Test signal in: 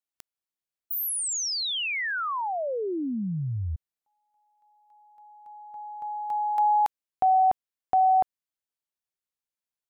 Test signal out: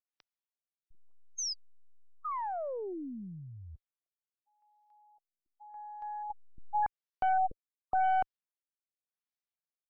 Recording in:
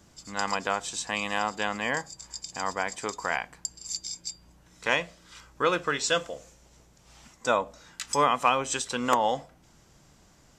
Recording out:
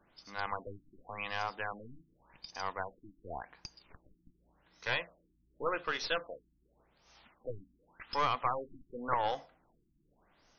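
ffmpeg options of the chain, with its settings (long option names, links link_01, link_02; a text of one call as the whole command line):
ffmpeg -i in.wav -af "equalizer=frequency=96:width_type=o:width=2.9:gain=-12.5,aeval=exprs='(tanh(8.91*val(0)+0.5)-tanh(0.5))/8.91':channel_layout=same,afftfilt=real='re*lt(b*sr/1024,330*pow(6600/330,0.5+0.5*sin(2*PI*0.88*pts/sr)))':imag='im*lt(b*sr/1024,330*pow(6600/330,0.5+0.5*sin(2*PI*0.88*pts/sr)))':win_size=1024:overlap=0.75,volume=-3dB" out.wav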